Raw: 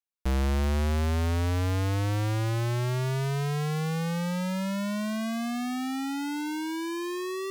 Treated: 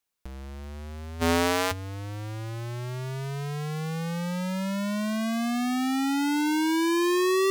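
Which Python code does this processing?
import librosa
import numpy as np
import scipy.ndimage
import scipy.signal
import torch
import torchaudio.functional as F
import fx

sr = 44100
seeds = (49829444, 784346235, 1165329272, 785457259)

y = fx.highpass(x, sr, hz=fx.line((1.2, 160.0), (1.71, 640.0)), slope=12, at=(1.2, 1.71), fade=0.02)
y = fx.over_compress(y, sr, threshold_db=-33.0, ratio=-0.5)
y = y * librosa.db_to_amplitude(6.0)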